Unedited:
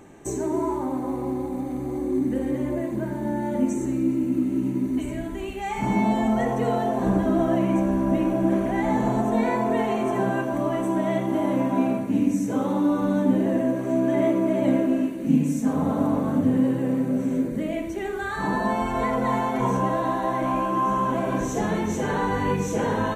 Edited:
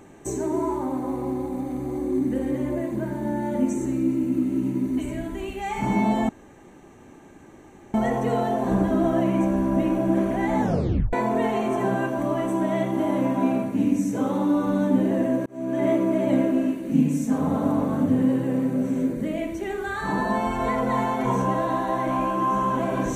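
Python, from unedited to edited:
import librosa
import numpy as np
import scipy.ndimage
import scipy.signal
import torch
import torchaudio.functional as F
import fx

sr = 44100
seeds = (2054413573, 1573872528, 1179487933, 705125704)

y = fx.edit(x, sr, fx.insert_room_tone(at_s=6.29, length_s=1.65),
    fx.tape_stop(start_s=8.96, length_s=0.52),
    fx.fade_in_span(start_s=13.81, length_s=0.41), tone=tone)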